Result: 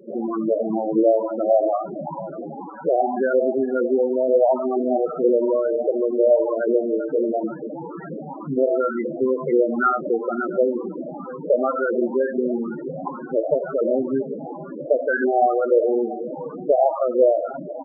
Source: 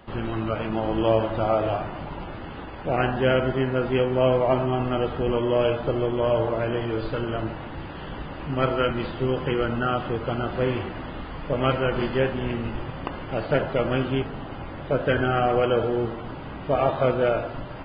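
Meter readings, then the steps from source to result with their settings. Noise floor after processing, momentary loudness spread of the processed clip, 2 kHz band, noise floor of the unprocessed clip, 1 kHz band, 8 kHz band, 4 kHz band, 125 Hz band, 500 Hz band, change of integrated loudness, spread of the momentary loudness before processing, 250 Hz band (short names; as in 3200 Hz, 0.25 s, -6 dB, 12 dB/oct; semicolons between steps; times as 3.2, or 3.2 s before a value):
-35 dBFS, 13 LU, -1.0 dB, -37 dBFS, +2.0 dB, n/a, under -40 dB, -14.5 dB, +5.0 dB, +3.5 dB, 14 LU, +3.0 dB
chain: Chebyshev band-pass 160–4100 Hz, order 4; compressor 6:1, threshold -23 dBFS, peak gain reduction 7.5 dB; LFO low-pass saw up 2.1 Hz 430–2300 Hz; feedback echo 0.69 s, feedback 24%, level -16.5 dB; loudest bins only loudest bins 8; gain +6 dB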